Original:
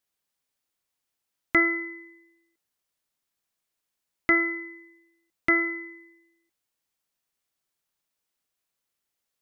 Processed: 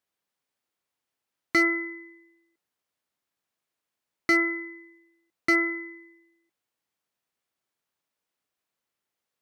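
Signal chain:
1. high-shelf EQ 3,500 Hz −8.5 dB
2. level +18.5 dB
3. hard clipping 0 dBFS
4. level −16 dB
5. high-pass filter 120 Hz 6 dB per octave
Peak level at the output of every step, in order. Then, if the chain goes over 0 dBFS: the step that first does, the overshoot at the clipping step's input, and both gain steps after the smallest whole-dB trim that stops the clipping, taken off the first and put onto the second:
−11.0, +7.5, 0.0, −16.0, −13.5 dBFS
step 2, 7.5 dB
step 2 +10.5 dB, step 4 −8 dB

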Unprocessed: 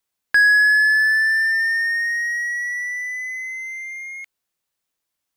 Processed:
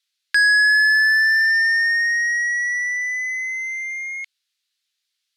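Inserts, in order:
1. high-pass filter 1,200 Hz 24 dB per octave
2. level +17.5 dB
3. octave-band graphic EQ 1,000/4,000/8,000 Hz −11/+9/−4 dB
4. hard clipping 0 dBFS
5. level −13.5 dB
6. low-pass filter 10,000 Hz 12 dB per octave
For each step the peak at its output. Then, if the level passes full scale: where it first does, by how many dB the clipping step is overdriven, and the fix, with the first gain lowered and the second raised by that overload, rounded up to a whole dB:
−9.0, +8.5, +6.0, 0.0, −13.5, −13.0 dBFS
step 2, 6.0 dB
step 2 +11.5 dB, step 5 −7.5 dB

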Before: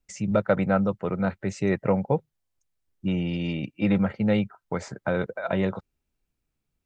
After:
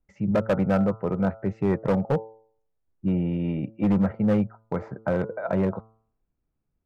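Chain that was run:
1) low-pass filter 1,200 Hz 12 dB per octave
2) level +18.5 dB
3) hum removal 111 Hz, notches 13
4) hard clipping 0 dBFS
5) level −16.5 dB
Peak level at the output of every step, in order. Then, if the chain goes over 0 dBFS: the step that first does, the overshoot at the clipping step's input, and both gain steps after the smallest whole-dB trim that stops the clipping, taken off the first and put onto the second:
−10.0, +8.5, +8.0, 0.0, −16.5 dBFS
step 2, 8.0 dB
step 2 +10.5 dB, step 5 −8.5 dB

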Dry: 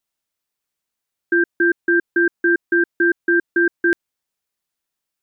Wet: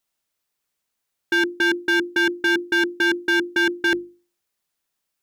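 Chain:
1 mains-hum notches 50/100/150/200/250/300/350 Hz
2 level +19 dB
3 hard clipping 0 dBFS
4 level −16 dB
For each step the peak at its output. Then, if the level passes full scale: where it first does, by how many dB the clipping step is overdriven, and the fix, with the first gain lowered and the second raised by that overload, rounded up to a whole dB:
−9.0, +10.0, 0.0, −16.0 dBFS
step 2, 10.0 dB
step 2 +9 dB, step 4 −6 dB

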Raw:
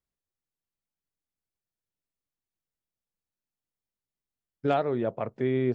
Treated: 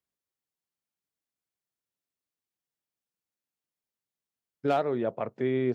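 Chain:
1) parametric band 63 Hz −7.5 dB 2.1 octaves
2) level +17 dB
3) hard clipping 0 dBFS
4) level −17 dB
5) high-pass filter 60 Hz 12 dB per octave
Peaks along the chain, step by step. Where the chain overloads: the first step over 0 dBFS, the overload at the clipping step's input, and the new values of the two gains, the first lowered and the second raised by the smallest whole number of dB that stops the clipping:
−13.0, +4.0, 0.0, −17.0, −15.5 dBFS
step 2, 4.0 dB
step 2 +13 dB, step 4 −13 dB

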